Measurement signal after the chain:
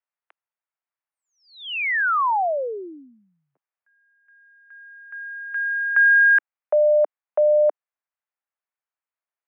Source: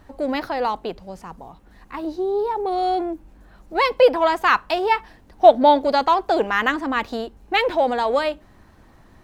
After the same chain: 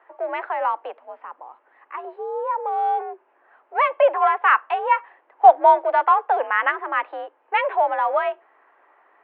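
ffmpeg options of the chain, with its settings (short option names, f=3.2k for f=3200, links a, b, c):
-filter_complex "[0:a]acrossover=split=480 2200:gain=0.0631 1 0.2[a][b][c];[a][b][c]amix=inputs=3:normalize=0,highpass=f=230:t=q:w=0.5412,highpass=f=230:t=q:w=1.307,lowpass=f=2.9k:t=q:w=0.5176,lowpass=f=2.9k:t=q:w=0.7071,lowpass=f=2.9k:t=q:w=1.932,afreqshift=64,volume=2dB"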